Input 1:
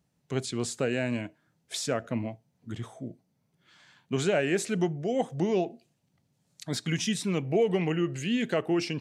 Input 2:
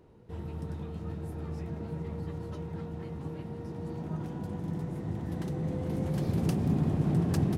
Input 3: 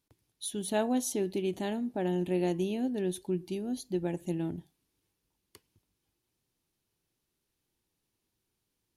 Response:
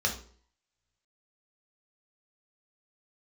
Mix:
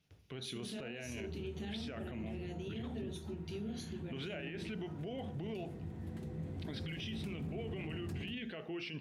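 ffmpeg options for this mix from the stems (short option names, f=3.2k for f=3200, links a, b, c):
-filter_complex "[0:a]equalizer=f=7k:t=o:w=0.31:g=-12.5,volume=-6dB,asplit=2[a][b];[b]volume=-21dB[c];[1:a]adelay=750,volume=-11dB,asplit=2[d][e];[e]volume=-13.5dB[f];[2:a]acompressor=threshold=-37dB:ratio=6,alimiter=level_in=12.5dB:limit=-24dB:level=0:latency=1:release=191,volume=-12.5dB,volume=-2dB,asplit=2[g][h];[h]volume=-5dB[i];[a][g]amix=inputs=2:normalize=0,highshelf=f=4.4k:t=q:w=3:g=-12,acompressor=threshold=-35dB:ratio=2.5,volume=0dB[j];[3:a]atrim=start_sample=2205[k];[c][f][i]amix=inputs=3:normalize=0[l];[l][k]afir=irnorm=-1:irlink=0[m];[d][j][m]amix=inputs=3:normalize=0,alimiter=level_in=10dB:limit=-24dB:level=0:latency=1:release=30,volume=-10dB"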